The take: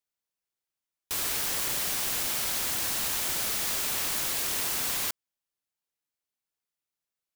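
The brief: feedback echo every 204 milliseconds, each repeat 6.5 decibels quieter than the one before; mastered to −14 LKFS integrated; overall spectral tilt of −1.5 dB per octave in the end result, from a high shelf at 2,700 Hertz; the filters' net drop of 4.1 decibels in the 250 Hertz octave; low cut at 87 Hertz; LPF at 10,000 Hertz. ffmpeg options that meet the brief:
ffmpeg -i in.wav -af "highpass=87,lowpass=10000,equalizer=frequency=250:width_type=o:gain=-5.5,highshelf=frequency=2700:gain=-6,aecho=1:1:204|408|612|816|1020|1224:0.473|0.222|0.105|0.0491|0.0231|0.0109,volume=20dB" out.wav

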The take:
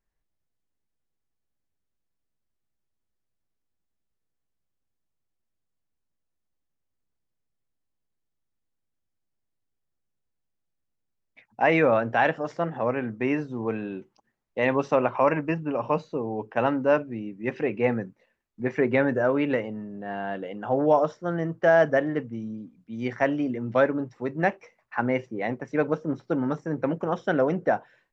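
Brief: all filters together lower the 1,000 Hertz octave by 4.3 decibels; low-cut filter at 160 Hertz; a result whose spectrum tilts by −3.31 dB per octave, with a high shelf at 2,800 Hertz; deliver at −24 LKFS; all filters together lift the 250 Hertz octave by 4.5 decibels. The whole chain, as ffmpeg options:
ffmpeg -i in.wav -af "highpass=160,equalizer=frequency=250:width_type=o:gain=6.5,equalizer=frequency=1000:width_type=o:gain=-7.5,highshelf=frequency=2800:gain=5.5,volume=1dB" out.wav

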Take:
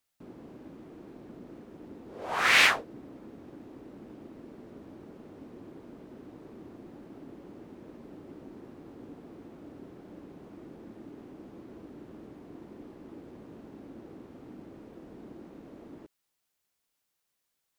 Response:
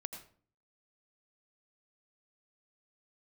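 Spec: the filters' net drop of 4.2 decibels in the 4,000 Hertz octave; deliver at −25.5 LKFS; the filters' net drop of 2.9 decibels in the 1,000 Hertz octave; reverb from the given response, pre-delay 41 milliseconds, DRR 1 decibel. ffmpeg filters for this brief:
-filter_complex "[0:a]equalizer=frequency=1000:width_type=o:gain=-3.5,equalizer=frequency=4000:width_type=o:gain=-5.5,asplit=2[link_01][link_02];[1:a]atrim=start_sample=2205,adelay=41[link_03];[link_02][link_03]afir=irnorm=-1:irlink=0,volume=1dB[link_04];[link_01][link_04]amix=inputs=2:normalize=0,volume=3.5dB"

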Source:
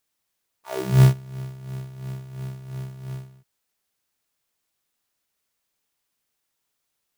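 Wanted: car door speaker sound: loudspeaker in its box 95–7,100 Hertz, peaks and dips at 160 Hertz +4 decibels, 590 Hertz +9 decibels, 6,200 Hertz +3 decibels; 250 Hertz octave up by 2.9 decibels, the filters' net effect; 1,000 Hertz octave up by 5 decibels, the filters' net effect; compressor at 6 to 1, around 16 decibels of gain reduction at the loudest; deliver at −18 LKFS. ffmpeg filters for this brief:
ffmpeg -i in.wav -af "equalizer=frequency=250:width_type=o:gain=5.5,equalizer=frequency=1000:width_type=o:gain=4.5,acompressor=threshold=-26dB:ratio=6,highpass=95,equalizer=frequency=160:width_type=q:width=4:gain=4,equalizer=frequency=590:width_type=q:width=4:gain=9,equalizer=frequency=6200:width_type=q:width=4:gain=3,lowpass=frequency=7100:width=0.5412,lowpass=frequency=7100:width=1.3066,volume=15dB" out.wav

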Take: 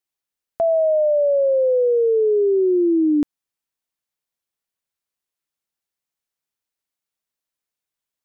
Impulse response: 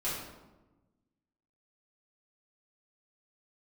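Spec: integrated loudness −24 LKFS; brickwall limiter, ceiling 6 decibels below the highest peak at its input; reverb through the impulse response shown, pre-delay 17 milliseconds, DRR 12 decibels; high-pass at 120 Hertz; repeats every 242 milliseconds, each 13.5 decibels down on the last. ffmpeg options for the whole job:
-filter_complex "[0:a]highpass=120,alimiter=limit=-19dB:level=0:latency=1,aecho=1:1:242|484:0.211|0.0444,asplit=2[link_01][link_02];[1:a]atrim=start_sample=2205,adelay=17[link_03];[link_02][link_03]afir=irnorm=-1:irlink=0,volume=-17.5dB[link_04];[link_01][link_04]amix=inputs=2:normalize=0,volume=-1.5dB"

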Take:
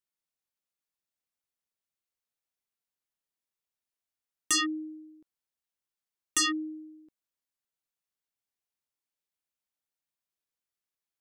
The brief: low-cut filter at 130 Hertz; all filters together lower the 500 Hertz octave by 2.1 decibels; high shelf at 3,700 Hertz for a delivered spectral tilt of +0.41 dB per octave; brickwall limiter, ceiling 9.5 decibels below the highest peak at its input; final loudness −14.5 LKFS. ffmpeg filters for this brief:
ffmpeg -i in.wav -af "highpass=130,equalizer=frequency=500:width_type=o:gain=-5.5,highshelf=frequency=3700:gain=-5.5,volume=24.5dB,alimiter=limit=-6.5dB:level=0:latency=1" out.wav

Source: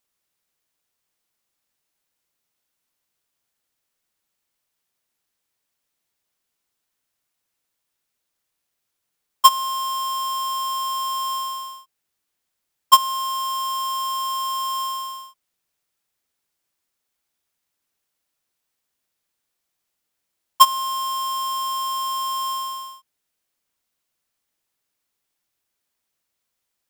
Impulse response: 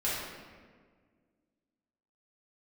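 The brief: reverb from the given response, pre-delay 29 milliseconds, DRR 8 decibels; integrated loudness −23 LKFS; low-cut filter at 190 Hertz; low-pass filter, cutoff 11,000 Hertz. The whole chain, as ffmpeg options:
-filter_complex "[0:a]highpass=190,lowpass=11000,asplit=2[link_01][link_02];[1:a]atrim=start_sample=2205,adelay=29[link_03];[link_02][link_03]afir=irnorm=-1:irlink=0,volume=-16dB[link_04];[link_01][link_04]amix=inputs=2:normalize=0,volume=-2.5dB"

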